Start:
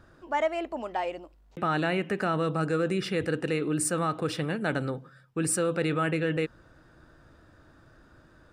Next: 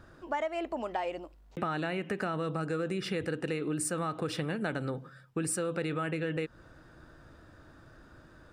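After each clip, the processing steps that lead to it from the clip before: compressor, threshold -31 dBFS, peak gain reduction 9 dB; gain +1.5 dB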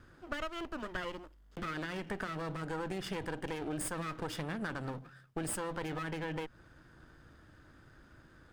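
minimum comb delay 0.61 ms; gain -3 dB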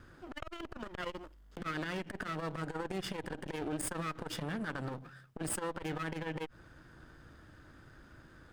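core saturation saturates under 380 Hz; gain +2.5 dB

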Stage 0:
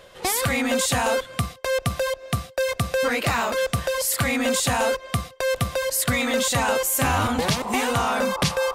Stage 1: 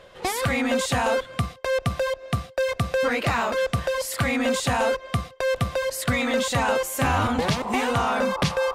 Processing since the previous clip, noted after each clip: LPF 3500 Hz 6 dB/oct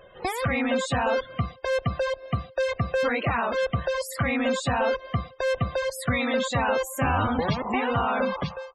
ending faded out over 0.52 s; loudest bins only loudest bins 64; gain -1.5 dB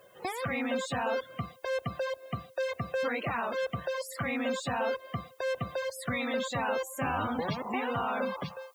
HPF 130 Hz 12 dB/oct; added noise blue -62 dBFS; gain -6.5 dB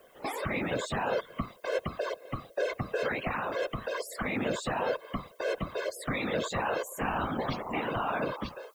whisperiser

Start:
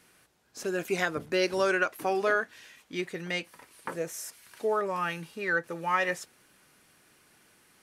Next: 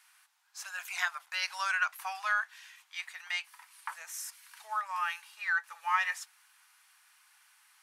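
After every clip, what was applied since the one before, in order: steep high-pass 840 Hz 48 dB/oct; gain -1 dB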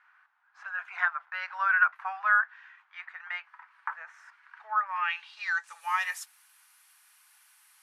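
low-pass sweep 1500 Hz -> 12000 Hz, 4.83–5.88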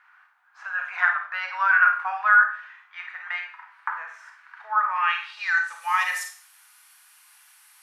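Schroeder reverb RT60 0.46 s, combs from 31 ms, DRR 3.5 dB; gain +5 dB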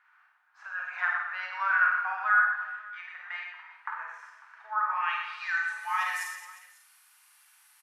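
reverse bouncing-ball echo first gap 50 ms, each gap 1.4×, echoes 5; gain -8 dB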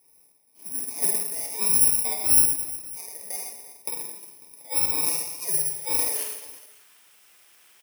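FFT order left unsorted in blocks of 32 samples; gain +5 dB

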